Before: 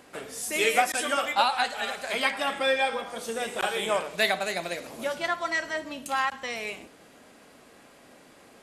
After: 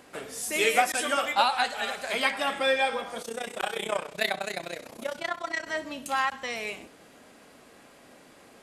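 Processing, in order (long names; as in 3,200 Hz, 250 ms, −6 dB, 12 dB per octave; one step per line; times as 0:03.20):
0:03.22–0:05.67: amplitude modulation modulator 31 Hz, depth 75%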